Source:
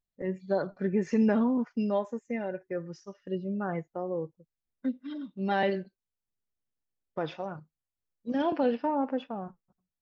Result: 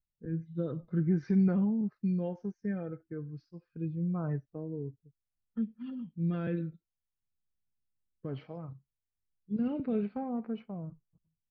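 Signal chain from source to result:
rotating-speaker cabinet horn 0.75 Hz
speed change −13%
bass and treble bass +12 dB, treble −6 dB
level −7.5 dB

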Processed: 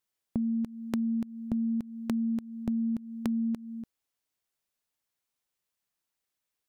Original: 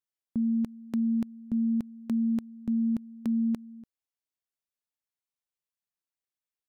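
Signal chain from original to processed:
downward compressor, threshold −36 dBFS, peak gain reduction 10.5 dB
level +7.5 dB

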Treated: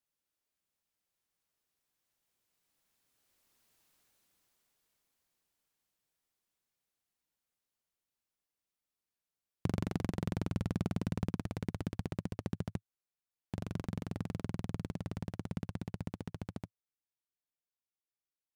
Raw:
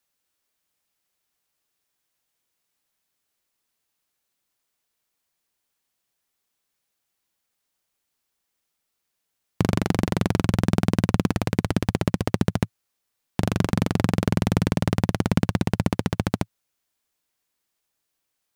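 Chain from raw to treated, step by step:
source passing by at 0:03.83, 9 m/s, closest 4.8 metres
low-shelf EQ 450 Hz +4.5 dB
level +5 dB

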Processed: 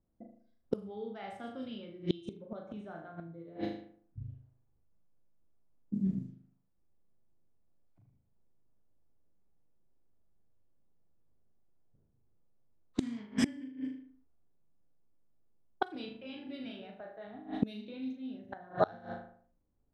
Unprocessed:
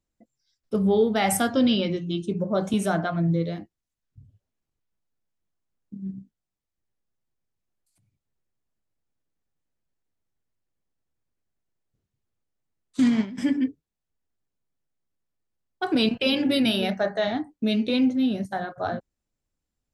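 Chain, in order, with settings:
flutter between parallel walls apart 6.6 metres, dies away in 0.59 s
gate with flip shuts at −19 dBFS, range −27 dB
low-pass that shuts in the quiet parts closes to 760 Hz, open at −36 dBFS
level +4.5 dB

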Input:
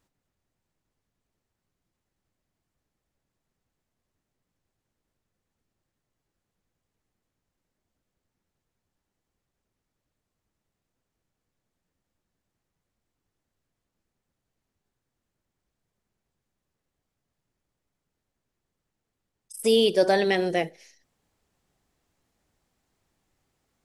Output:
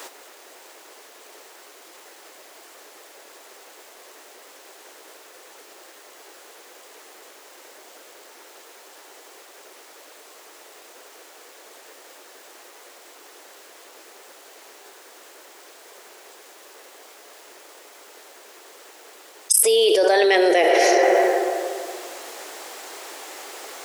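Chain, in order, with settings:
Butterworth high-pass 370 Hz 36 dB per octave
on a send at −15 dB: convolution reverb RT60 2.1 s, pre-delay 32 ms
on the sum: envelope flattener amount 100%

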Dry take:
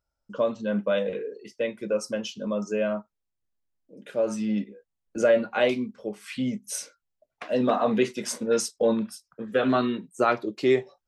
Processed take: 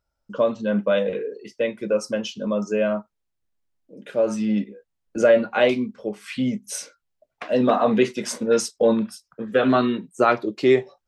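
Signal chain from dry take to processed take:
high-shelf EQ 7,700 Hz −6.5 dB
level +4.5 dB

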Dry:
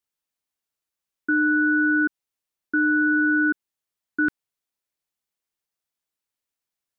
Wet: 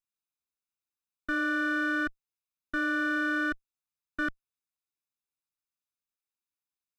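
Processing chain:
lower of the sound and its delayed copy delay 0.79 ms
level −7.5 dB

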